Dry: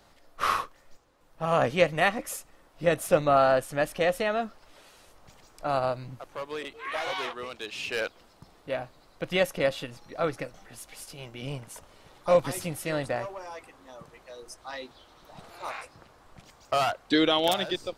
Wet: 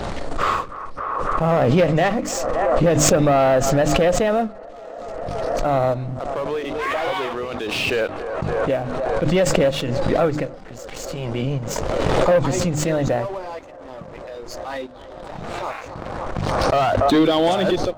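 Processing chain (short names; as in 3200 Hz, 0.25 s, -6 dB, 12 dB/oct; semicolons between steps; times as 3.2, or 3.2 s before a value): nonlinear frequency compression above 3400 Hz 1.5:1; tilt shelf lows +6 dB, about 890 Hz; in parallel at 0 dB: limiter -14.5 dBFS, peak gain reduction 8.5 dB; on the sum: sample leveller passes 2; notches 50/100/150/200/250/300 Hz; on a send: band-limited delay 0.286 s, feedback 81%, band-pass 790 Hz, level -24 dB; on the sum: backwards sustainer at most 21 dB/s; gain -6 dB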